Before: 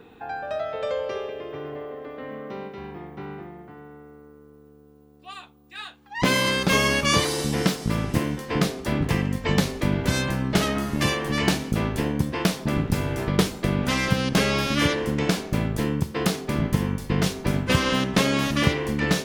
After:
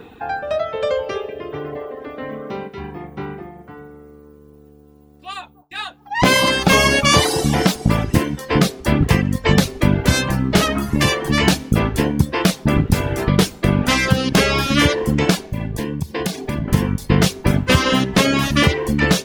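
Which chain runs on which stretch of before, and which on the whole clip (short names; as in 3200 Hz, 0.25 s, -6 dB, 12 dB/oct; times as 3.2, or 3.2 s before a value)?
5.35–8.04 gate with hold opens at -48 dBFS, closes at -54 dBFS + bell 770 Hz +6.5 dB 0.49 oct + echo with dull and thin repeats by turns 0.197 s, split 1000 Hz, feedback 57%, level -13 dB
15.44–16.68 compressor 2.5:1, threshold -29 dBFS + Butterworth band-stop 1300 Hz, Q 6.3
whole clip: reverb removal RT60 0.92 s; bell 73 Hz +4 dB; maximiser +10 dB; gain -1 dB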